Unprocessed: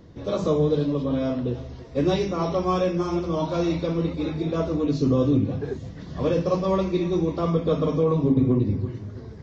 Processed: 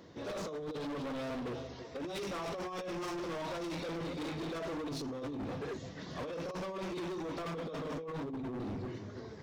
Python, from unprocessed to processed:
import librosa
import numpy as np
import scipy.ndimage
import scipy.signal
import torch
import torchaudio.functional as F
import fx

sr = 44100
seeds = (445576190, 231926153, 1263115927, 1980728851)

y = fx.highpass(x, sr, hz=510.0, slope=6)
y = fx.over_compress(y, sr, threshold_db=-30.0, ratio=-0.5)
y = np.clip(10.0 ** (35.0 / 20.0) * y, -1.0, 1.0) / 10.0 ** (35.0 / 20.0)
y = y * 10.0 ** (-2.0 / 20.0)